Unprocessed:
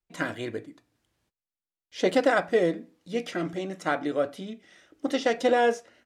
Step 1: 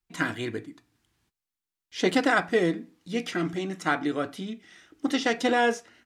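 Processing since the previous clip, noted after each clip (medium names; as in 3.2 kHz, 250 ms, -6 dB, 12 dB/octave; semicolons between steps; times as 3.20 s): peaking EQ 560 Hz -12 dB 0.51 oct; trim +3.5 dB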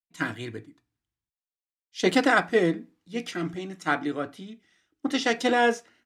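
three bands expanded up and down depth 70%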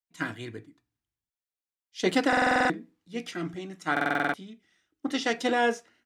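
buffer glitch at 2.28/3.92 s, samples 2048, times 8; trim -3 dB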